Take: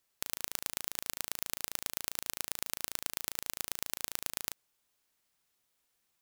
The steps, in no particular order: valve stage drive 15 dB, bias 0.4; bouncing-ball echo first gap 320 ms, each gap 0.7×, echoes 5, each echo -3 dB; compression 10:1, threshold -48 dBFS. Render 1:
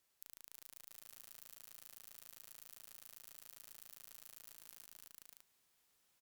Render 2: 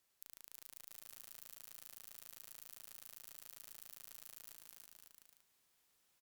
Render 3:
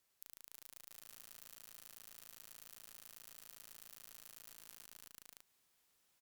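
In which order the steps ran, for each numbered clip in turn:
valve stage > bouncing-ball echo > compression; valve stage > compression > bouncing-ball echo; bouncing-ball echo > valve stage > compression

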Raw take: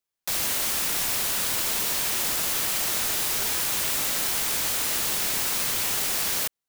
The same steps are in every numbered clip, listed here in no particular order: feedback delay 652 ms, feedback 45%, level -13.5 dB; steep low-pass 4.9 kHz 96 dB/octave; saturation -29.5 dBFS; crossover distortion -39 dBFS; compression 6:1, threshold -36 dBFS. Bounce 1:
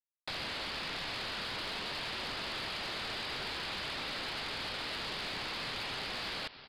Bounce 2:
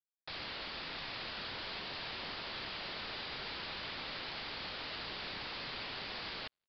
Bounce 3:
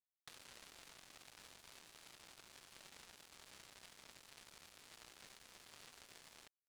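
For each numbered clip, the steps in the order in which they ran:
feedback delay > crossover distortion > steep low-pass > saturation > compression; saturation > feedback delay > crossover distortion > steep low-pass > compression; saturation > feedback delay > compression > steep low-pass > crossover distortion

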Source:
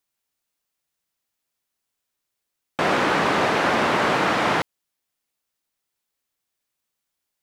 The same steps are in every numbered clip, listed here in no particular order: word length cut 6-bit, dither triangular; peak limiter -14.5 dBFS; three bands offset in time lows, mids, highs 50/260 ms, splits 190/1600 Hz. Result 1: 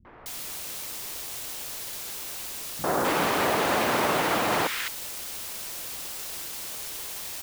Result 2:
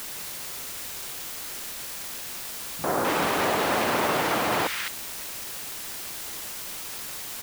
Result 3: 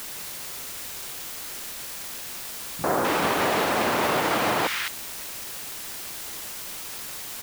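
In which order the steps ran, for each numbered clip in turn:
peak limiter > word length cut > three bands offset in time; peak limiter > three bands offset in time > word length cut; three bands offset in time > peak limiter > word length cut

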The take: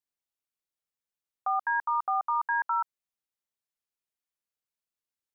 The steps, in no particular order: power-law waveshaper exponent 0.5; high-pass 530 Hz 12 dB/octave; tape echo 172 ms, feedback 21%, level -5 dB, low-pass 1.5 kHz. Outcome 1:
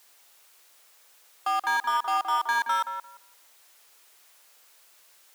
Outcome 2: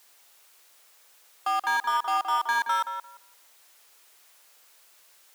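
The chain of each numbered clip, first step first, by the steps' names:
power-law waveshaper > high-pass > tape echo; power-law waveshaper > tape echo > high-pass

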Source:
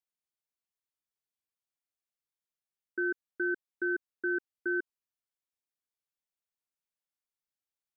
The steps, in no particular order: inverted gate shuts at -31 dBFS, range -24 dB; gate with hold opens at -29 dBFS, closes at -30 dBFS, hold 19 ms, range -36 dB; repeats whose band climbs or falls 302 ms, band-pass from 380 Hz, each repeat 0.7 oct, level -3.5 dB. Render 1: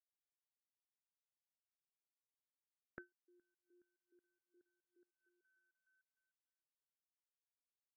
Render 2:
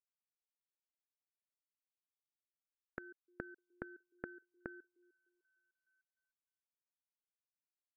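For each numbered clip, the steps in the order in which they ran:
repeats whose band climbs or falls > inverted gate > gate with hold; repeats whose band climbs or falls > gate with hold > inverted gate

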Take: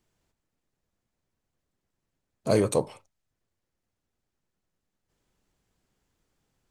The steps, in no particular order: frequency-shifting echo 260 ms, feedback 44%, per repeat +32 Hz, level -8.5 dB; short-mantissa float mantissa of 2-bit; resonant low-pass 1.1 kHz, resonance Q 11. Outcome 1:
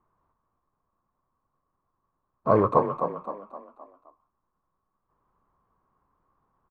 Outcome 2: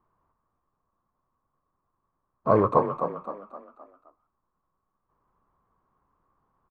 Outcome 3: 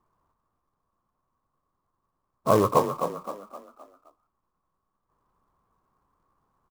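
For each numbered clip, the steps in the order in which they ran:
short-mantissa float > frequency-shifting echo > resonant low-pass; short-mantissa float > resonant low-pass > frequency-shifting echo; resonant low-pass > short-mantissa float > frequency-shifting echo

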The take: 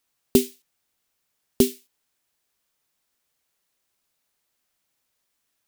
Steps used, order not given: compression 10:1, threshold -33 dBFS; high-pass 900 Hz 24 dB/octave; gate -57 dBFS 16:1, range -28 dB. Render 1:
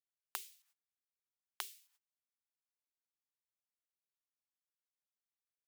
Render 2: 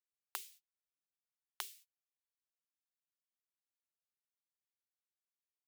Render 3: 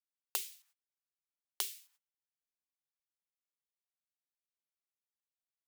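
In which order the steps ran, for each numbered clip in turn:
gate > compression > high-pass; compression > gate > high-pass; gate > high-pass > compression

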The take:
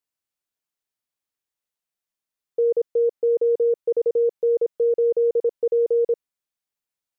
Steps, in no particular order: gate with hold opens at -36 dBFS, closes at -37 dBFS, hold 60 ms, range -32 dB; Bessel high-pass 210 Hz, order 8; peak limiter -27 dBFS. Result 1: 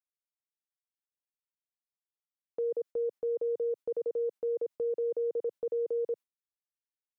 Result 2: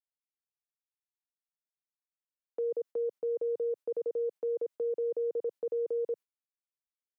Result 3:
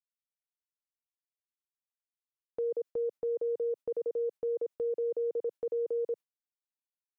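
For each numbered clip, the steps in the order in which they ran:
Bessel high-pass > gate with hold > peak limiter; gate with hold > peak limiter > Bessel high-pass; peak limiter > Bessel high-pass > gate with hold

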